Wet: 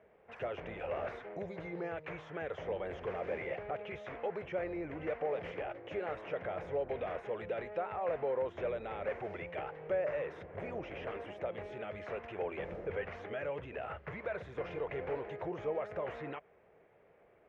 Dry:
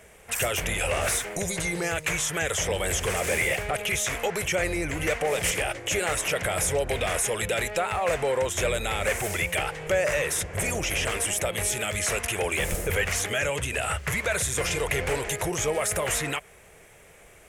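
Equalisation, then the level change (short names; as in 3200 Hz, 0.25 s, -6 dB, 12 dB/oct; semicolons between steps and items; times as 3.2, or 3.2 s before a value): band-pass 490 Hz, Q 0.62; air absorption 290 m; -7.5 dB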